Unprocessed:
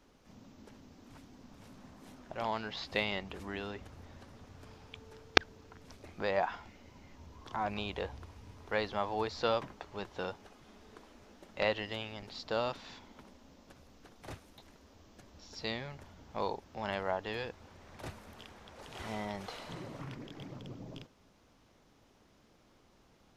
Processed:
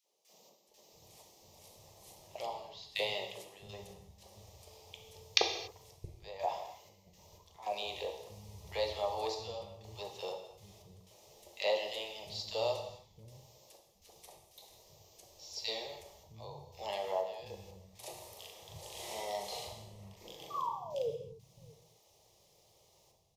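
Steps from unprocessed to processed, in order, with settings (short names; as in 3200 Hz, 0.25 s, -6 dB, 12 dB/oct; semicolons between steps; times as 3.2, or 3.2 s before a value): HPF 100 Hz 6 dB/oct; high shelf 5300 Hz +11.5 dB; fixed phaser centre 620 Hz, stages 4; 20.5–21.07 painted sound fall 430–1200 Hz -35 dBFS; step gate ".x.xxxxxxx..xx" 61 bpm -12 dB; 18.1–20.61 doubler 40 ms -3.5 dB; three bands offset in time highs, mids, lows 40/670 ms, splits 220/1400 Hz; non-linear reverb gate 0.31 s falling, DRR 3 dB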